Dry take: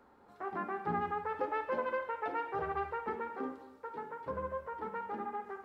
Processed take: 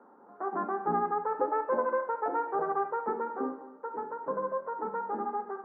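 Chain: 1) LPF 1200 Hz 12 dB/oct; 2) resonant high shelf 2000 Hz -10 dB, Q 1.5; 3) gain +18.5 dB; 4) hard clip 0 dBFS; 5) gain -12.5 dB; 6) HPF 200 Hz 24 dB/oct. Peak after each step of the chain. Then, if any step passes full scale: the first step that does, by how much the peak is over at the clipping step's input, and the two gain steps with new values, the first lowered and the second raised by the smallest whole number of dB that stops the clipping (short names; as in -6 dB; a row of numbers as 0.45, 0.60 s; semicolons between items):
-23.0, -22.0, -3.5, -3.5, -16.0, -15.5 dBFS; no overload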